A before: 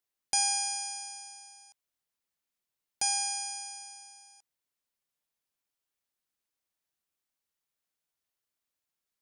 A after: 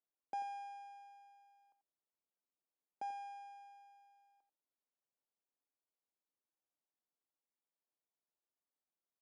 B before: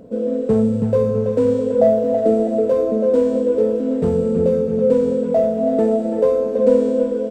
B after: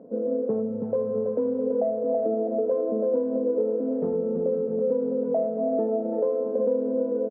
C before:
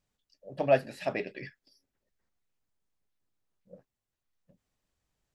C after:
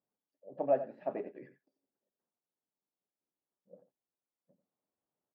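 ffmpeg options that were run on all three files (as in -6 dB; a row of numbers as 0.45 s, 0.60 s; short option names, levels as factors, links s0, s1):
-filter_complex "[0:a]acompressor=threshold=0.141:ratio=6,asuperpass=centerf=470:order=4:qfactor=0.58,asplit=2[s0][s1];[s1]aecho=0:1:89:0.237[s2];[s0][s2]amix=inputs=2:normalize=0,volume=0.631"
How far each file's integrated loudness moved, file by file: -17.5 LU, -8.5 LU, -5.0 LU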